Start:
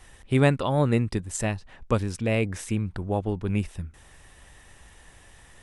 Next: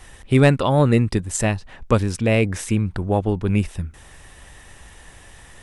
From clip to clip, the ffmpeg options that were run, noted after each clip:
-af "acontrast=78"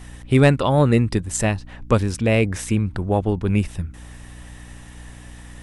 -af "aeval=exprs='val(0)+0.0112*(sin(2*PI*60*n/s)+sin(2*PI*2*60*n/s)/2+sin(2*PI*3*60*n/s)/3+sin(2*PI*4*60*n/s)/4+sin(2*PI*5*60*n/s)/5)':c=same"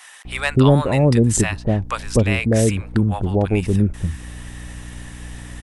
-filter_complex "[0:a]asplit=2[s0][s1];[s1]acompressor=threshold=0.0631:ratio=6,volume=0.891[s2];[s0][s2]amix=inputs=2:normalize=0,acrossover=split=790[s3][s4];[s3]adelay=250[s5];[s5][s4]amix=inputs=2:normalize=0"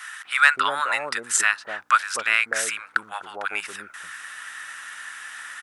-af "highpass=f=1400:t=q:w=5.3"

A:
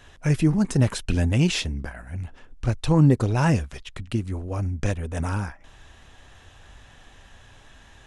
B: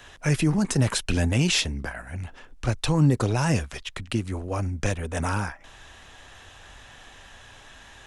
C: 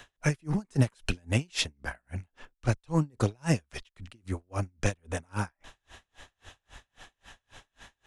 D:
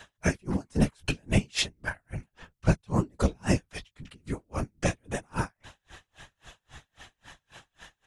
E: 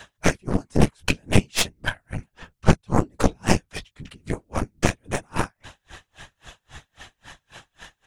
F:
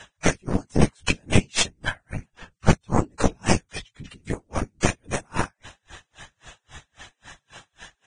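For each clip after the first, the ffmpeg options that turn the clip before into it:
-filter_complex "[0:a]lowshelf=f=360:g=-8,acrossover=split=160|4400[s0][s1][s2];[s1]alimiter=limit=0.075:level=0:latency=1:release=23[s3];[s0][s3][s2]amix=inputs=3:normalize=0,volume=1.88"
-af "aeval=exprs='val(0)*pow(10,-39*(0.5-0.5*cos(2*PI*3.7*n/s))/20)':c=same"
-filter_complex "[0:a]asplit=2[s0][s1];[s1]adelay=17,volume=0.355[s2];[s0][s2]amix=inputs=2:normalize=0,afftfilt=real='hypot(re,im)*cos(2*PI*random(0))':imag='hypot(re,im)*sin(2*PI*random(1))':win_size=512:overlap=0.75,volume=2.24"
-filter_complex "[0:a]asplit=2[s0][s1];[s1]acompressor=threshold=0.0251:ratio=12,volume=0.794[s2];[s0][s2]amix=inputs=2:normalize=0,aeval=exprs='0.398*(cos(1*acos(clip(val(0)/0.398,-1,1)))-cos(1*PI/2))+0.0316*(cos(3*acos(clip(val(0)/0.398,-1,1)))-cos(3*PI/2))+0.158*(cos(4*acos(clip(val(0)/0.398,-1,1)))-cos(4*PI/2))':c=same,volume=1.41"
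-af "volume=0.891" -ar 22050 -c:a libvorbis -b:a 16k

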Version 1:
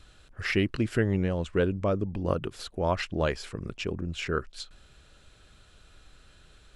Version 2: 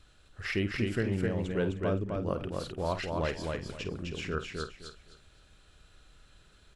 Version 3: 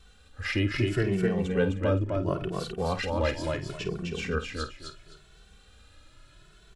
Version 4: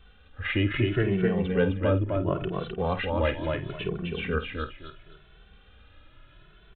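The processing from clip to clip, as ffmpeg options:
-filter_complex "[0:a]asplit=2[s0][s1];[s1]adelay=50,volume=0.266[s2];[s0][s2]amix=inputs=2:normalize=0,aecho=1:1:258|516|774:0.668|0.16|0.0385,volume=0.531"
-filter_complex "[0:a]asplit=2[s0][s1];[s1]adelay=2.2,afreqshift=0.73[s2];[s0][s2]amix=inputs=2:normalize=1,volume=2.24"
-af "aresample=8000,aresample=44100,volume=1.19"

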